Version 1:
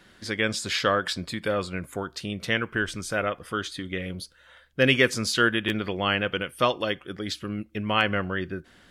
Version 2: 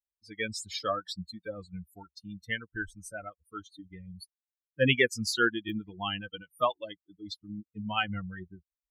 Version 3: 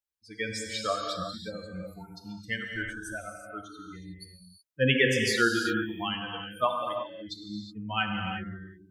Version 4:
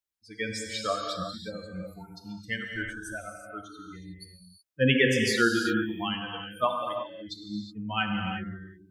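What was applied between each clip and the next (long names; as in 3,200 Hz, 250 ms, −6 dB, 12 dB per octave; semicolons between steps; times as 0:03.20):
spectral dynamics exaggerated over time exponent 3
reverb whose tail is shaped and stops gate 390 ms flat, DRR 1.5 dB
dynamic equaliser 230 Hz, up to +4 dB, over −39 dBFS, Q 1.2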